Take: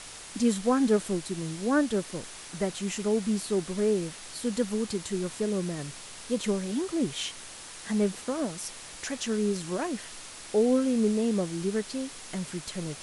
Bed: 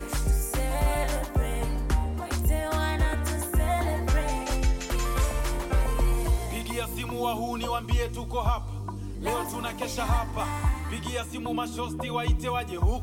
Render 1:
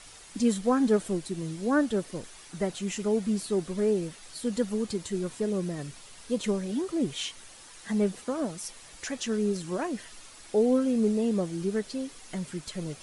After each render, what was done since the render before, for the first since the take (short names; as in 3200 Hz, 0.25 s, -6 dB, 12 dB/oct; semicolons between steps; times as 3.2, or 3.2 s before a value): denoiser 8 dB, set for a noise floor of -44 dBFS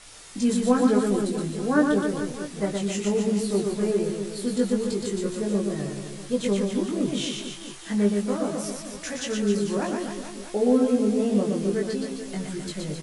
doubler 20 ms -2 dB; reverse bouncing-ball echo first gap 0.12 s, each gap 1.2×, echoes 5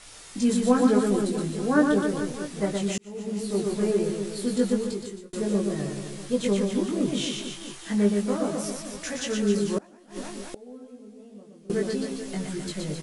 2.98–3.74 fade in; 4.72–5.33 fade out; 9.78–11.7 flipped gate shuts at -21 dBFS, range -24 dB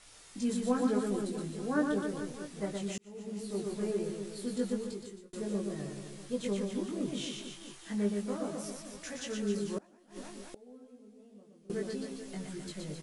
gain -9.5 dB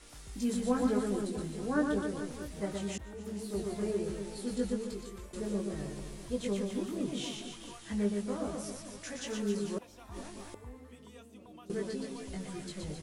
add bed -24 dB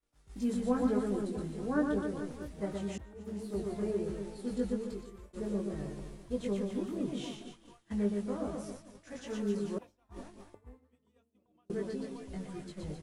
high shelf 2200 Hz -8.5 dB; expander -40 dBFS